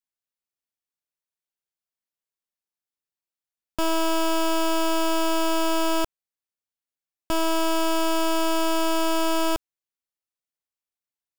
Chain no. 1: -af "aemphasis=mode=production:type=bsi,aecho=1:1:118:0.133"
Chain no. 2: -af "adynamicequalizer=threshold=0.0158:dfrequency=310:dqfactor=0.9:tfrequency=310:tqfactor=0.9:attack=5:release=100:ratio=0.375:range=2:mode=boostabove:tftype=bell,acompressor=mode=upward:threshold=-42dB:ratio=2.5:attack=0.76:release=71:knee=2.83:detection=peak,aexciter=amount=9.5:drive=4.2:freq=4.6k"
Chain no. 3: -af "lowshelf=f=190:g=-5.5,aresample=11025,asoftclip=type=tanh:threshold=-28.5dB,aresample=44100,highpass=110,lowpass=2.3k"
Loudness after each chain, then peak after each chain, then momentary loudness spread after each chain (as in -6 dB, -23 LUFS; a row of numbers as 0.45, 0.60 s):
-17.0, -13.5, -33.0 LUFS; -3.0, -1.5, -23.5 dBFS; 4, 4, 4 LU